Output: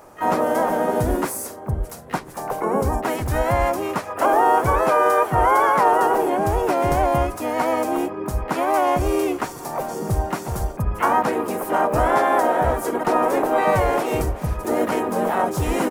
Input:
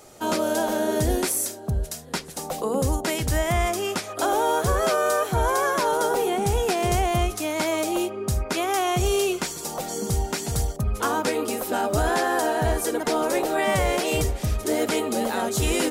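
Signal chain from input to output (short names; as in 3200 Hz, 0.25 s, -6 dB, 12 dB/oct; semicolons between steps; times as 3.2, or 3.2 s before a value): ten-band EQ 1000 Hz +9 dB, 4000 Hz -12 dB, 8000 Hz -7 dB; harmoniser -4 st -3 dB, +5 st -12 dB, +12 st -16 dB; gain -1 dB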